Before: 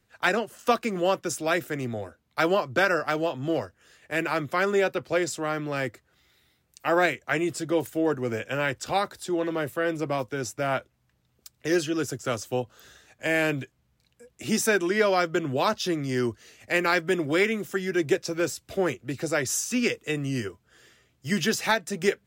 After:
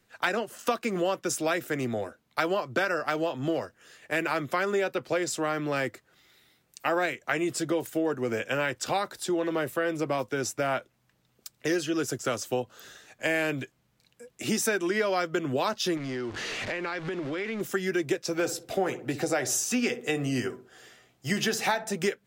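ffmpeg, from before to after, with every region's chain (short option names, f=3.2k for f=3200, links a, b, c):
-filter_complex "[0:a]asettb=1/sr,asplit=3[a][b][c];[a]atrim=end=15.974[d];[b]atrim=start=15.97:end=17.61,asetpts=PTS-STARTPTS,afade=t=in:d=0.004:c=qsin,afade=t=out:st=1.636:d=0.004:c=qsin,aeval=exprs='val(0)+0.5*0.0299*sgn(val(0))':c=same,lowpass=4.4k,acompressor=threshold=-32dB:ratio=10:attack=3.2:release=140:knee=1:detection=peak[e];[c]atrim=start=17.606[f];[d][e]acrossfade=d=0.004:c1=hsin:c2=qsin[g];[g][f]acrossfade=d=0.004:c1=qsin:c2=hsin,asettb=1/sr,asplit=3[h][i][j];[h]atrim=end=18.334[k];[i]atrim=start=18.33:end=21.93,asetpts=PTS-STARTPTS,afade=t=in:d=0.004:c=qsin,afade=t=out:st=3.596:d=0.004:c=qsin,equalizer=f=750:t=o:w=0.31:g=9.5,asplit=2[l][m];[m]adelay=16,volume=-12.5dB[n];[l][n]amix=inputs=2:normalize=0,atrim=end_sample=158760,asplit=2[o][p];[p]adelay=62,lowpass=f=930:p=1,volume=-12.5dB,asplit=2[q][r];[r]adelay=62,lowpass=f=930:p=1,volume=0.44,asplit=2[s][t];[t]adelay=62,lowpass=f=930:p=1,volume=0.44,asplit=2[u][v];[v]adelay=62,lowpass=f=930:p=1,volume=0.44[w];[o][q][s][u][w]amix=inputs=5:normalize=0,atrim=end_sample=158760[x];[j]atrim=start=21.926[y];[k][x]acrossfade=d=0.004:c1=hsin:c2=qsin[z];[z][y]acrossfade=d=0.004:c1=qsin:c2=hsin,equalizer=f=68:w=1.1:g=-13,acompressor=threshold=-28dB:ratio=4,volume=3.5dB"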